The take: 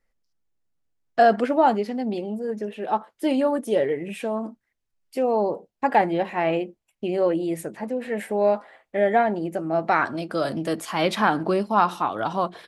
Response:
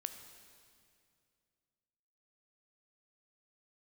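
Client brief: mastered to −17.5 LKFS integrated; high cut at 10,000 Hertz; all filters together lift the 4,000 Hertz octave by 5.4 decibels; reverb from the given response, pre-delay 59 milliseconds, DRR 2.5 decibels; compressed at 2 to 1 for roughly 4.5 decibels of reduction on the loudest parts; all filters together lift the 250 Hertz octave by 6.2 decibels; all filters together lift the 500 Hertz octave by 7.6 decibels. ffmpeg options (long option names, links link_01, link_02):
-filter_complex "[0:a]lowpass=10000,equalizer=frequency=250:width_type=o:gain=5,equalizer=frequency=500:width_type=o:gain=8.5,equalizer=frequency=4000:width_type=o:gain=7,acompressor=threshold=-16dB:ratio=2,asplit=2[link_01][link_02];[1:a]atrim=start_sample=2205,adelay=59[link_03];[link_02][link_03]afir=irnorm=-1:irlink=0,volume=-0.5dB[link_04];[link_01][link_04]amix=inputs=2:normalize=0,volume=1dB"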